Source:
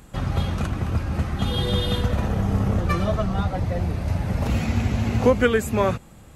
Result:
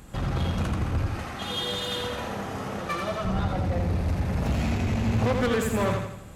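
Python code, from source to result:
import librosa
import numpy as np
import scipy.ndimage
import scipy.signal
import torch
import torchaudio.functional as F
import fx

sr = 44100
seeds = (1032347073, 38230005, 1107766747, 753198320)

y = fx.self_delay(x, sr, depth_ms=0.082)
y = fx.highpass(y, sr, hz=670.0, slope=6, at=(1.08, 3.25))
y = 10.0 ** (-22.5 / 20.0) * np.tanh(y / 10.0 ** (-22.5 / 20.0))
y = fx.echo_feedback(y, sr, ms=84, feedback_pct=47, wet_db=-4.5)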